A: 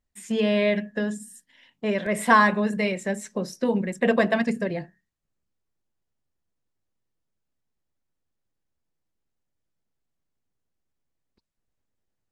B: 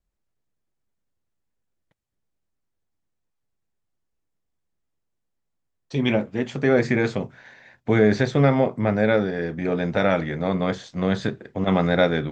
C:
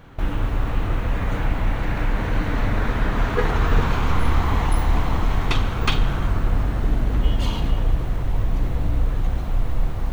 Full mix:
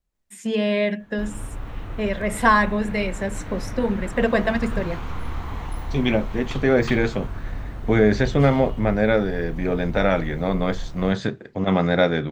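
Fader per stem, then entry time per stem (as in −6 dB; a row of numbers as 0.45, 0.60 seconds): +0.5, +0.5, −10.5 decibels; 0.15, 0.00, 1.00 seconds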